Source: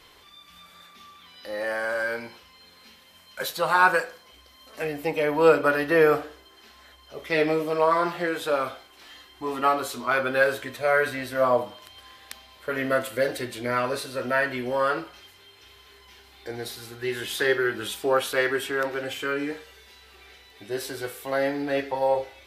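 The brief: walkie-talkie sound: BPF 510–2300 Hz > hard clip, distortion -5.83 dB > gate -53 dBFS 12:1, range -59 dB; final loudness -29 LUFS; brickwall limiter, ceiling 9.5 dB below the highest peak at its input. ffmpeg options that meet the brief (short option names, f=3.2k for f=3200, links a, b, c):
-af "alimiter=limit=-15dB:level=0:latency=1,highpass=510,lowpass=2.3k,asoftclip=type=hard:threshold=-31dB,agate=range=-59dB:threshold=-53dB:ratio=12,volume=6dB"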